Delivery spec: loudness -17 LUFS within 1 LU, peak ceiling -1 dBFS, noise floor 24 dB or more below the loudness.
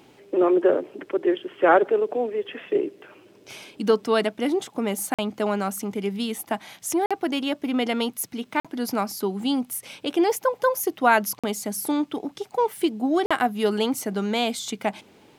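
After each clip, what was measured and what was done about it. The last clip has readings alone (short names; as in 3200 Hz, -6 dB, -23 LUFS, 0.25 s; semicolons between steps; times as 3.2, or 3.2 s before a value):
dropouts 5; longest dropout 46 ms; loudness -24.5 LUFS; peak -5.0 dBFS; loudness target -17.0 LUFS
-> interpolate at 5.14/7.06/8.6/11.39/13.26, 46 ms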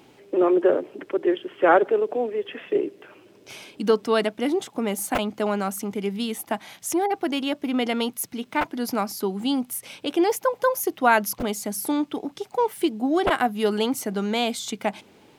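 dropouts 0; loudness -24.5 LUFS; peak -5.0 dBFS; loudness target -17.0 LUFS
-> gain +7.5 dB; limiter -1 dBFS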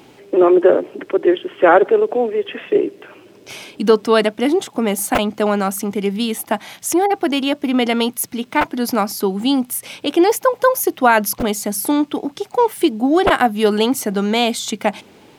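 loudness -17.5 LUFS; peak -1.0 dBFS; noise floor -47 dBFS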